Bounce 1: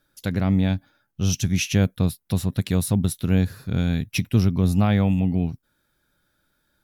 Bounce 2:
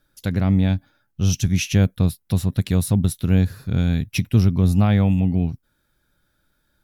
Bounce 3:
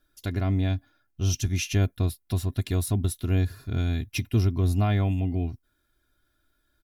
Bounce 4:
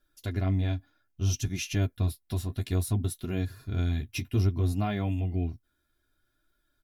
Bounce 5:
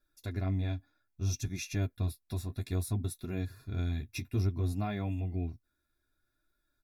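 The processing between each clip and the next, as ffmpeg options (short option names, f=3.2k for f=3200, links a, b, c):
-af "lowshelf=f=100:g=7.5"
-af "aecho=1:1:2.9:0.67,volume=-6dB"
-af "flanger=delay=4.8:depth=9.9:regen=-25:speed=0.61:shape=triangular"
-af "asuperstop=centerf=3000:order=12:qfactor=6.5,volume=-5dB"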